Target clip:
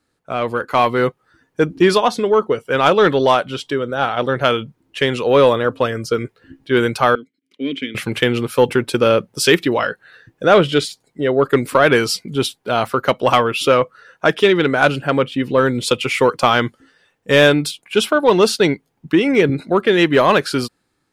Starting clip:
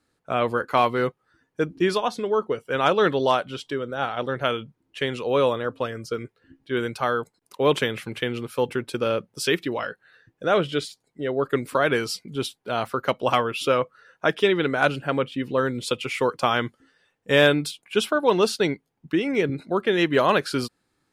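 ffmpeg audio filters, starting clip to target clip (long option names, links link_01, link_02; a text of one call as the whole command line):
ffmpeg -i in.wav -filter_complex "[0:a]aeval=exprs='0.501*(cos(1*acos(clip(val(0)/0.501,-1,1)))-cos(1*PI/2))+0.0282*(cos(5*acos(clip(val(0)/0.501,-1,1)))-cos(5*PI/2))':channel_layout=same,asettb=1/sr,asplit=3[link_01][link_02][link_03];[link_01]atrim=end=7.154[link_04];[link_02]atrim=start=7.15:end=7.95,asetpts=PTS-STARTPTS,afade=type=in:duration=0.004:curve=qsin,afade=type=out:start_time=0.796:duration=0.004:curve=qsin,asplit=3[link_05][link_06][link_07];[link_05]bandpass=frequency=270:width_type=q:width=8,volume=0dB[link_08];[link_06]bandpass=frequency=2290:width_type=q:width=8,volume=-6dB[link_09];[link_07]bandpass=frequency=3010:width_type=q:width=8,volume=-9dB[link_10];[link_08][link_09][link_10]amix=inputs=3:normalize=0[link_11];[link_03]atrim=start=7.946[link_12];[link_04][link_11]acrossfade=duration=0.004:curve1=hsin:curve2=qsin[link_13];[link_13][link_12]acrossfade=duration=0.004:curve1=qsin:curve2=hsin,dynaudnorm=framelen=210:gausssize=7:maxgain=11.5dB" out.wav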